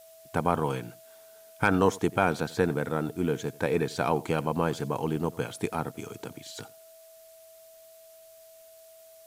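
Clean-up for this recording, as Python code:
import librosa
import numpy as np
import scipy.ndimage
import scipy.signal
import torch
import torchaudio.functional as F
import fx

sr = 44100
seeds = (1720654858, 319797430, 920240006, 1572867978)

y = fx.notch(x, sr, hz=650.0, q=30.0)
y = fx.noise_reduce(y, sr, print_start_s=6.91, print_end_s=7.41, reduce_db=21.0)
y = fx.fix_echo_inverse(y, sr, delay_ms=89, level_db=-21.5)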